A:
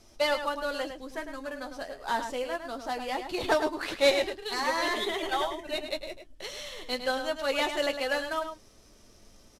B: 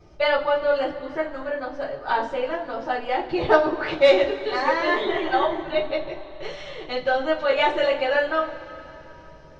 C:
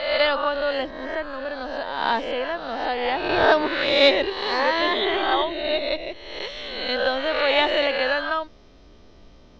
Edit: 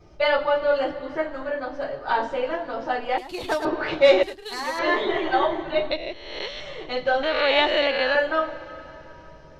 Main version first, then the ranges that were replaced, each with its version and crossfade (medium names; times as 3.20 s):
B
3.18–3.65 s: from A
4.23–4.79 s: from A
5.91–6.60 s: from C
7.23–8.15 s: from C